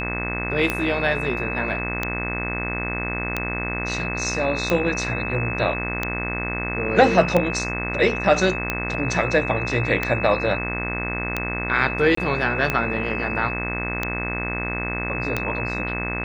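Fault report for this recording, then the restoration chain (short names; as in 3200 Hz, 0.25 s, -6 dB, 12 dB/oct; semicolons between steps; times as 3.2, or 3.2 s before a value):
buzz 60 Hz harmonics 38 -29 dBFS
tick 45 rpm -8 dBFS
tone 2600 Hz -28 dBFS
12.15–12.17 gap 24 ms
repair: de-click; de-hum 60 Hz, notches 38; notch 2600 Hz, Q 30; interpolate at 12.15, 24 ms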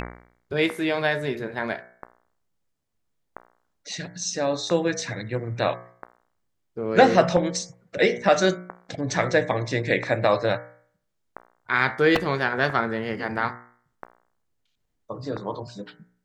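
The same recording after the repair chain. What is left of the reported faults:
none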